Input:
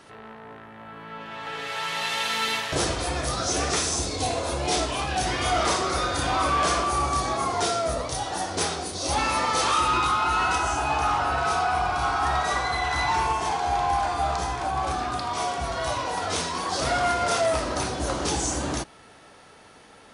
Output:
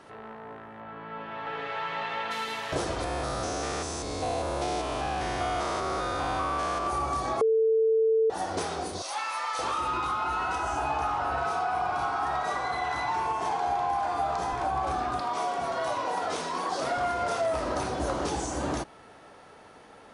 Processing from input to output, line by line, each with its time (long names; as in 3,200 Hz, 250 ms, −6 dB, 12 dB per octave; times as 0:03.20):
0:00.80–0:02.30: low-pass filter 4,800 Hz → 2,400 Hz
0:03.04–0:06.87: spectrum averaged block by block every 200 ms
0:07.41–0:08.30: beep over 445 Hz −13 dBFS
0:09.02–0:09.59: high-pass filter 1,100 Hz
0:11.51–0:14.53: high-pass filter 100 Hz
0:15.20–0:16.97: high-pass filter 170 Hz
whole clip: low-shelf EQ 440 Hz −10.5 dB; downward compressor, threshold −28 dBFS; tilt shelving filter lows +7.5 dB, about 1,400 Hz